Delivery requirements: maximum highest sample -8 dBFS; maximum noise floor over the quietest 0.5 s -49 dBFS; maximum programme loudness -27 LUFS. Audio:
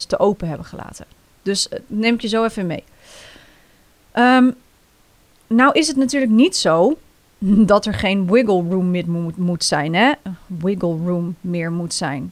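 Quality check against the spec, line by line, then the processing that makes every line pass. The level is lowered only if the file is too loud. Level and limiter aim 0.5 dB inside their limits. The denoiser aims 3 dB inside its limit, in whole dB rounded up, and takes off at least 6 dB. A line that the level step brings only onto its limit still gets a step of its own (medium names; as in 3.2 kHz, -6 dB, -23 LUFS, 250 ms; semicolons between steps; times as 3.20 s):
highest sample -2.0 dBFS: fail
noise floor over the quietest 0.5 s -54 dBFS: pass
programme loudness -17.5 LUFS: fail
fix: trim -10 dB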